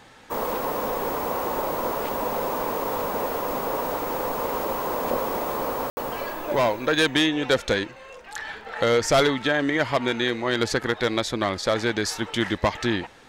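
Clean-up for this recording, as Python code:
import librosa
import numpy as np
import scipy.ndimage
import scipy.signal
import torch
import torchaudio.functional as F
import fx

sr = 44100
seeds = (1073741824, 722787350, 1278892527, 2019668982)

y = fx.fix_ambience(x, sr, seeds[0], print_start_s=7.85, print_end_s=8.35, start_s=5.9, end_s=5.97)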